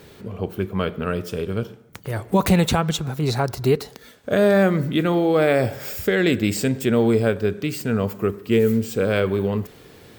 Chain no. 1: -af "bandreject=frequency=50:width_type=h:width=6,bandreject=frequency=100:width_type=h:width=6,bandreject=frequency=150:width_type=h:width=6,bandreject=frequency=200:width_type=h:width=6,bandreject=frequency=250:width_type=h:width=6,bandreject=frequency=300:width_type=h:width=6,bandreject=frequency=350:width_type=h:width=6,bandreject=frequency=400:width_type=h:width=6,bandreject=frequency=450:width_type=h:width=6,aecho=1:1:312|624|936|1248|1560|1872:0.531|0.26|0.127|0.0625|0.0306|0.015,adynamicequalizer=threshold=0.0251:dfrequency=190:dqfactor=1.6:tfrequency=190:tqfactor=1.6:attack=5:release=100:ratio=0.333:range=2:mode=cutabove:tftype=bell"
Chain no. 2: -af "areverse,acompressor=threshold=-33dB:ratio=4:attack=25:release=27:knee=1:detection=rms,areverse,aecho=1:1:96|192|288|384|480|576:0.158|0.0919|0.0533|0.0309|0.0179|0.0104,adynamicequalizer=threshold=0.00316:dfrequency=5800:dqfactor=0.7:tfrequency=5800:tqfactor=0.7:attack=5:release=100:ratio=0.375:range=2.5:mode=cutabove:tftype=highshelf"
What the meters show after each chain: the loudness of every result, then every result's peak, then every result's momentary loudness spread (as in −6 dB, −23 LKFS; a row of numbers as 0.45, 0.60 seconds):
−21.5, −31.5 LKFS; −5.5, −15.5 dBFS; 10, 6 LU